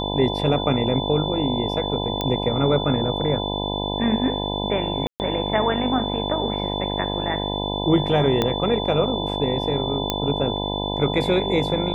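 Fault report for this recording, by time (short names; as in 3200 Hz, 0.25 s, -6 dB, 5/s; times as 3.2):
buzz 50 Hz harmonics 20 -27 dBFS
tone 3500 Hz -29 dBFS
2.21 pop -10 dBFS
5.07–5.2 gap 0.129 s
8.42 pop -7 dBFS
10.1 pop -6 dBFS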